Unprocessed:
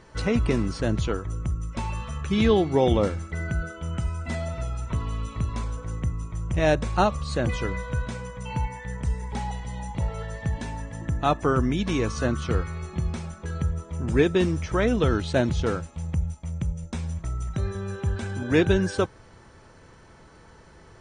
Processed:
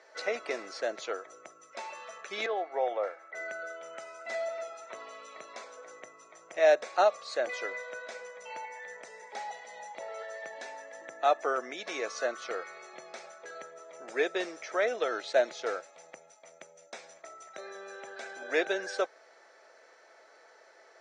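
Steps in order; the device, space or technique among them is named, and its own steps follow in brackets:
phone speaker on a table (loudspeaker in its box 490–6,900 Hz, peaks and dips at 650 Hz +6 dB, 1,000 Hz −9 dB, 2,000 Hz +3 dB, 3,000 Hz −7 dB)
0:02.46–0:03.35: three-way crossover with the lows and the highs turned down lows −13 dB, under 520 Hz, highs −18 dB, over 2,100 Hz
level −2.5 dB

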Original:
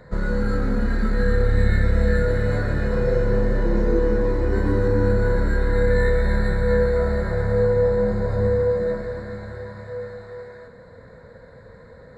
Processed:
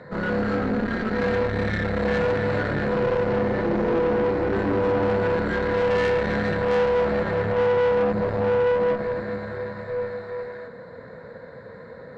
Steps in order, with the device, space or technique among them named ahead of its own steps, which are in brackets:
valve radio (band-pass filter 150–4,000 Hz; tube saturation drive 25 dB, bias 0.6; saturating transformer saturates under 230 Hz)
level +8 dB

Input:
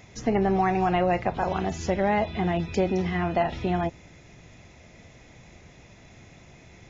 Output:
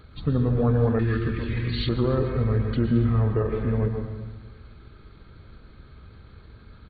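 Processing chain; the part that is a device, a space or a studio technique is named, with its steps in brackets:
monster voice (pitch shifter −8 semitones; low-shelf EQ 190 Hz +8.5 dB; convolution reverb RT60 1.2 s, pre-delay 104 ms, DRR 5 dB)
0:00.99–0:01.89: drawn EQ curve 280 Hz 0 dB, 720 Hz −21 dB, 2,000 Hz +13 dB
feedback echo with a high-pass in the loop 144 ms, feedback 68%, high-pass 420 Hz, level −17 dB
level −3.5 dB

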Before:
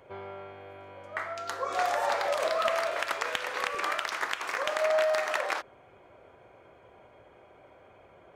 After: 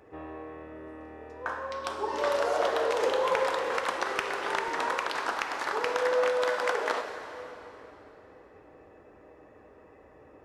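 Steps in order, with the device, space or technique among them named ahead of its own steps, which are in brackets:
slowed and reverbed (speed change −20%; convolution reverb RT60 3.4 s, pre-delay 13 ms, DRR 5.5 dB)

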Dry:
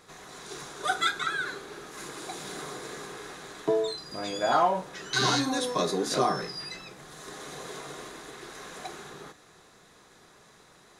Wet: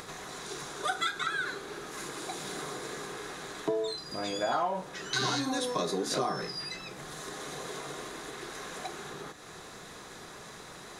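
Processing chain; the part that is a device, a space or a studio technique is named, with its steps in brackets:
upward and downward compression (upward compression, threshold −36 dBFS; downward compressor 3 to 1, threshold −28 dBFS, peak gain reduction 7.5 dB)

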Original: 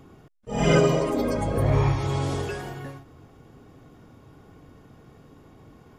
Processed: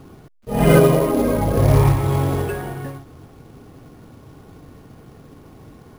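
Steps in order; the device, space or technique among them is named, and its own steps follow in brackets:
high-frequency loss of the air 390 metres
early companding sampler (sample-rate reduction 11,000 Hz, jitter 0%; log-companded quantiser 6 bits)
level +7.5 dB

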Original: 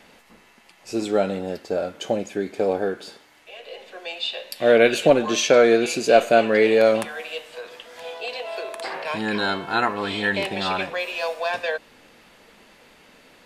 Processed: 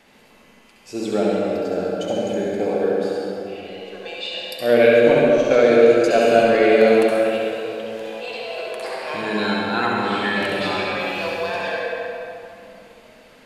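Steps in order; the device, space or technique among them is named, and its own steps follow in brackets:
0:04.91–0:06.04: noise gate −19 dBFS, range −17 dB
tunnel (flutter between parallel walls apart 11.5 metres, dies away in 0.62 s; convolution reverb RT60 2.8 s, pre-delay 63 ms, DRR −2.5 dB)
level −3.5 dB

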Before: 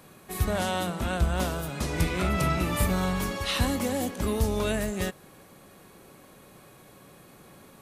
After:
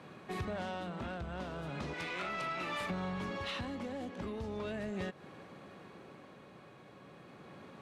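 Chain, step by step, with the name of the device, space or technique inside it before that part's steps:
0:01.93–0:02.90: high-pass filter 1,100 Hz 6 dB per octave
AM radio (band-pass filter 100–3,400 Hz; downward compressor, threshold −34 dBFS, peak gain reduction 11 dB; soft clipping −29.5 dBFS, distortion −19 dB; amplitude tremolo 0.37 Hz, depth 34%)
level +1 dB

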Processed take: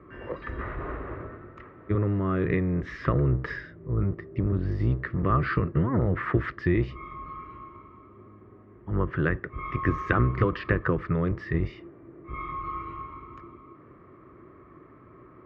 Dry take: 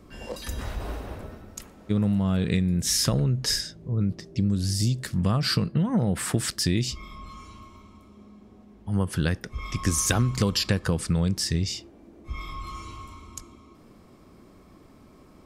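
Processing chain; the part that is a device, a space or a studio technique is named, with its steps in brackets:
sub-octave bass pedal (sub-octave generator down 1 octave, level −2 dB; loudspeaker in its box 62–2,100 Hz, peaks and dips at 79 Hz −6 dB, 210 Hz −9 dB, 360 Hz +7 dB, 790 Hz −7 dB, 1,200 Hz +10 dB, 1,900 Hz +7 dB)

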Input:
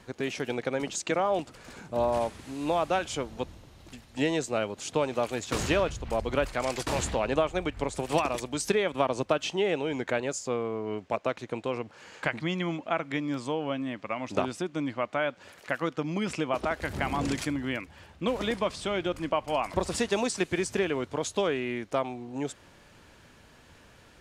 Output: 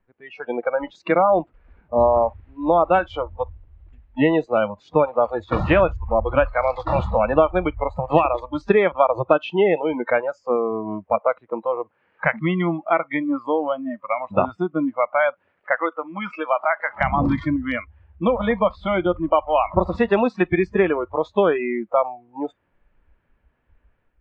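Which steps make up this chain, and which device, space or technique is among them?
0:15.76–0:17.01: meter weighting curve A
noise reduction from a noise print of the clip's start 25 dB
action camera in a waterproof case (low-pass filter 2,400 Hz 24 dB per octave; automatic gain control gain up to 7 dB; level +3.5 dB; AAC 128 kbit/s 44,100 Hz)

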